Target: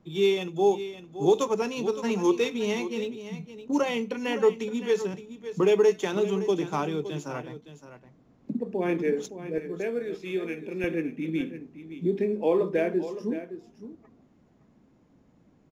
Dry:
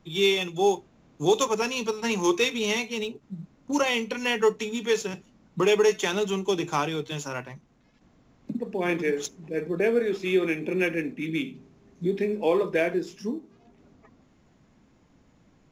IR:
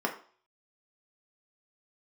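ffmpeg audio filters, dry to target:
-af "asetnsamples=n=441:p=0,asendcmd='9.58 equalizer g 2;10.84 equalizer g 9.5',equalizer=f=290:w=0.3:g=10,aecho=1:1:565:0.237,volume=0.355"

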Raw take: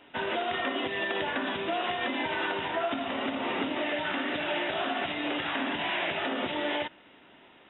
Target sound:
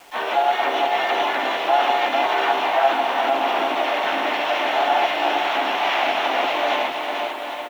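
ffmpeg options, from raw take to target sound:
-filter_complex "[0:a]highpass=450,equalizer=f=460:t=q:w=4:g=-5,equalizer=f=720:t=q:w=4:g=8,equalizer=f=1700:t=q:w=4:g=-4,lowpass=f=3100:w=0.5412,lowpass=f=3100:w=1.3066,asplit=2[s0][s1];[s1]aecho=0:1:450|787.5|1041|1230|1373:0.631|0.398|0.251|0.158|0.1[s2];[s0][s2]amix=inputs=2:normalize=0,asplit=4[s3][s4][s5][s6];[s4]asetrate=35002,aresample=44100,atempo=1.25992,volume=0.158[s7];[s5]asetrate=52444,aresample=44100,atempo=0.840896,volume=0.708[s8];[s6]asetrate=88200,aresample=44100,atempo=0.5,volume=0.141[s9];[s3][s7][s8][s9]amix=inputs=4:normalize=0,acrusher=bits=8:mix=0:aa=0.000001,volume=2"

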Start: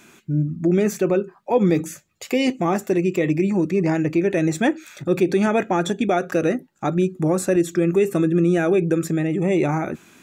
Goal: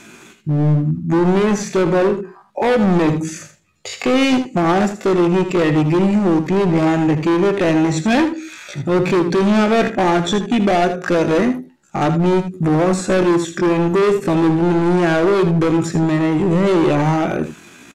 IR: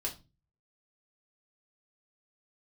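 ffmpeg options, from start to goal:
-filter_complex "[0:a]atempo=0.57,acrossover=split=6900[s0][s1];[s1]acompressor=threshold=0.00178:ratio=4:attack=1:release=60[s2];[s0][s2]amix=inputs=2:normalize=0,asoftclip=type=hard:threshold=0.0891,lowpass=11000,asplit=2[s3][s4];[s4]aecho=0:1:79:0.299[s5];[s3][s5]amix=inputs=2:normalize=0,volume=2.66"

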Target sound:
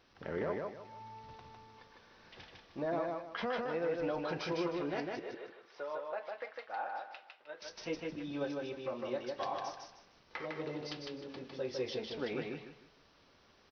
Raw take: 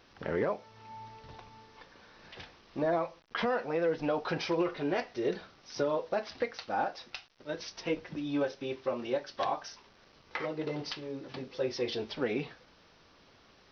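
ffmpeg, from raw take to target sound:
-filter_complex "[0:a]asettb=1/sr,asplit=3[s0][s1][s2];[s0]atrim=end=5.194[s3];[s1]atrim=start=5.19:end=7.62,asetpts=PTS-STARTPTS,afade=t=in:d=0.004:c=qsin,afade=t=out:st=2.426:d=0.004:c=qsin,acrossover=split=510 3200:gain=0.0708 1 0.0708[s4][s5][s6];[s4][s5][s6]amix=inputs=3:normalize=0[s7];[s2]atrim=start=7.616[s8];[s3][s7]acrossfade=d=0.004:c1=hsin:c2=qsin[s9];[s9][s8]acrossfade=d=0.004:c1=qsin:c2=hsin,aecho=1:1:154|308|462|616:0.708|0.205|0.0595|0.0173,volume=0.473"

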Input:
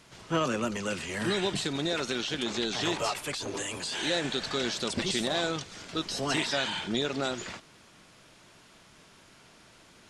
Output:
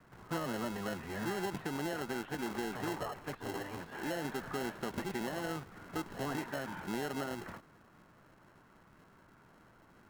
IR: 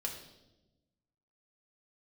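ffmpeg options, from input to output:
-filter_complex "[0:a]lowpass=f=1600:w=0.5412,lowpass=f=1600:w=1.3066,acrossover=split=320|710[s0][s1][s2];[s0]acompressor=threshold=0.0126:ratio=4[s3];[s1]acompressor=threshold=0.0158:ratio=4[s4];[s2]acompressor=threshold=0.00891:ratio=4[s5];[s3][s4][s5]amix=inputs=3:normalize=0,acrossover=split=630|990[s6][s7][s8];[s6]acrusher=samples=37:mix=1:aa=0.000001[s9];[s9][s7][s8]amix=inputs=3:normalize=0,volume=0.794"

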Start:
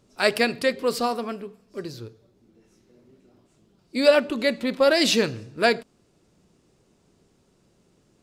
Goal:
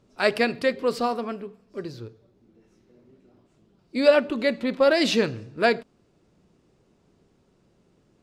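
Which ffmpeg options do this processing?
-af "lowpass=f=3100:p=1"

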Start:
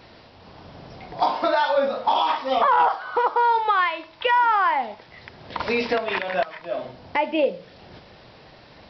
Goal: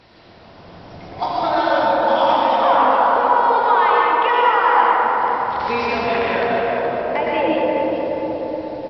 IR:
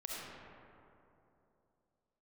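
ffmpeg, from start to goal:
-filter_complex "[0:a]asplit=2[s0][s1];[s1]adelay=423,lowpass=f=2800:p=1,volume=0.473,asplit=2[s2][s3];[s3]adelay=423,lowpass=f=2800:p=1,volume=0.47,asplit=2[s4][s5];[s5]adelay=423,lowpass=f=2800:p=1,volume=0.47,asplit=2[s6][s7];[s7]adelay=423,lowpass=f=2800:p=1,volume=0.47,asplit=2[s8][s9];[s9]adelay=423,lowpass=f=2800:p=1,volume=0.47,asplit=2[s10][s11];[s11]adelay=423,lowpass=f=2800:p=1,volume=0.47[s12];[s0][s2][s4][s6][s8][s10][s12]amix=inputs=7:normalize=0[s13];[1:a]atrim=start_sample=2205,asetrate=23373,aresample=44100[s14];[s13][s14]afir=irnorm=-1:irlink=0"

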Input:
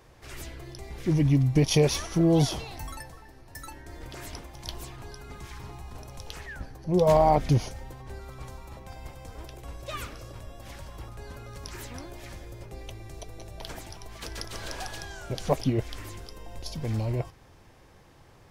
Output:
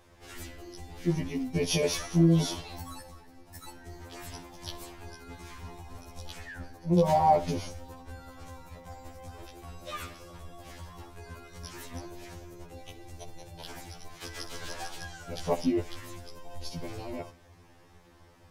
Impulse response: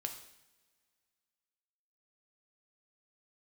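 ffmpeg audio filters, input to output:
-filter_complex "[0:a]asplit=2[s0][s1];[1:a]atrim=start_sample=2205,adelay=62[s2];[s1][s2]afir=irnorm=-1:irlink=0,volume=0.158[s3];[s0][s3]amix=inputs=2:normalize=0,afftfilt=real='re*2*eq(mod(b,4),0)':imag='im*2*eq(mod(b,4),0)':win_size=2048:overlap=0.75"

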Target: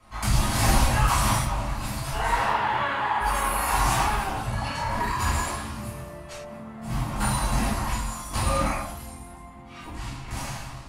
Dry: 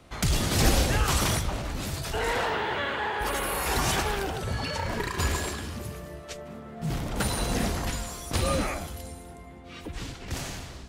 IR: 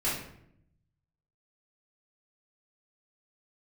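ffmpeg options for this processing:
-filter_complex "[0:a]equalizer=f=400:t=o:w=0.67:g=-10,equalizer=f=1000:t=o:w=0.67:g=11,equalizer=f=10000:t=o:w=0.67:g=6[s0];[1:a]atrim=start_sample=2205,afade=t=out:st=0.17:d=0.01,atrim=end_sample=7938[s1];[s0][s1]afir=irnorm=-1:irlink=0,volume=0.398"

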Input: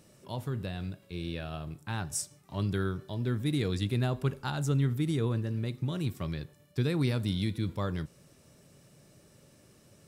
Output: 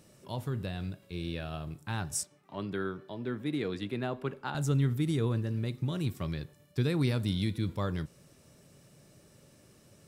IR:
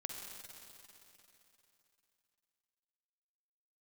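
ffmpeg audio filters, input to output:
-filter_complex "[0:a]asettb=1/sr,asplit=3[s0][s1][s2];[s0]atrim=end=2.234[s3];[s1]atrim=start=2.23:end=4.55,asetpts=PTS-STARTPTS,afade=t=in:d=0.004:c=qsin,afade=t=out:st=2.316:d=0.004:c=qsin,acrossover=split=190 3300:gain=0.158 1 0.224[s4][s5][s6];[s4][s5][s6]amix=inputs=3:normalize=0[s7];[s2]atrim=start=4.546[s8];[s3][s7]acrossfade=d=0.004:c1=hsin:c2=qsin[s9];[s9][s8]acrossfade=d=0.004:c1=qsin:c2=hsin"

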